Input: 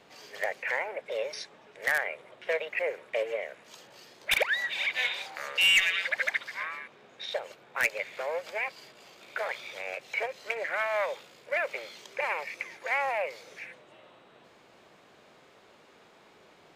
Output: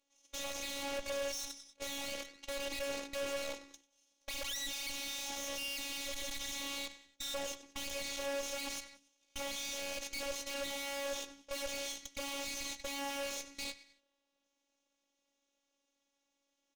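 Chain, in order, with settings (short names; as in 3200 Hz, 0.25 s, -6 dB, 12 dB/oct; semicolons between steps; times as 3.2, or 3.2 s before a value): minimum comb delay 0.31 ms; gate -46 dBFS, range -34 dB; bell 6200 Hz +14 dB 1 oct; on a send: frequency-shifting echo 94 ms, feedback 44%, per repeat -73 Hz, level -20 dB; on the sum: sample leveller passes 2; in parallel at -1.5 dB: compressor, threshold -35 dBFS, peak gain reduction 21 dB; on the sum: tube stage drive 39 dB, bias 0.55; robotiser 279 Hz; limiter -33 dBFS, peak gain reduction 11 dB; gain +10.5 dB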